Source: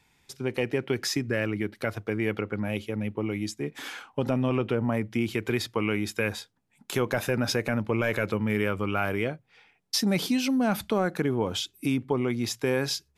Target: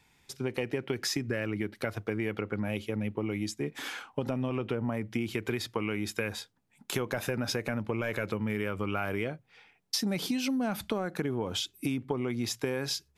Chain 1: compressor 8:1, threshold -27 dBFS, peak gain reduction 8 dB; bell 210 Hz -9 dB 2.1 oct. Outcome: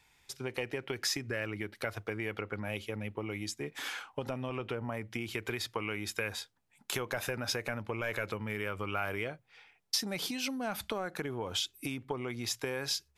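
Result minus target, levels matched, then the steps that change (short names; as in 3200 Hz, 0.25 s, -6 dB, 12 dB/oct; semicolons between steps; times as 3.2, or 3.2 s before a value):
250 Hz band -4.5 dB
remove: bell 210 Hz -9 dB 2.1 oct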